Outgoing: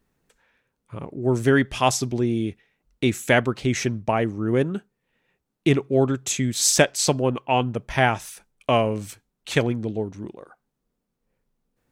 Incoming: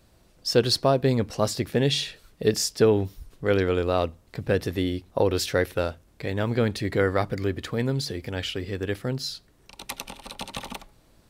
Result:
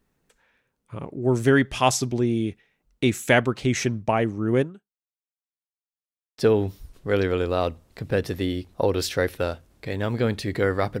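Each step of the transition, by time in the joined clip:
outgoing
0:04.60–0:05.47: fade out exponential
0:05.47–0:06.38: silence
0:06.38: continue with incoming from 0:02.75

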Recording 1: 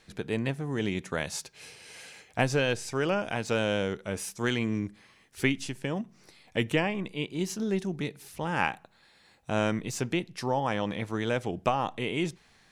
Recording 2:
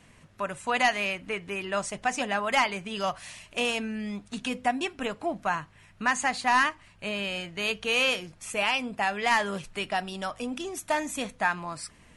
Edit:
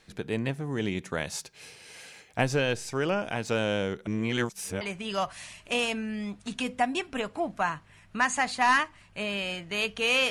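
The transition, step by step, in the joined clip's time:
recording 1
0:04.07–0:04.81: reverse
0:04.81: continue with recording 2 from 0:02.67

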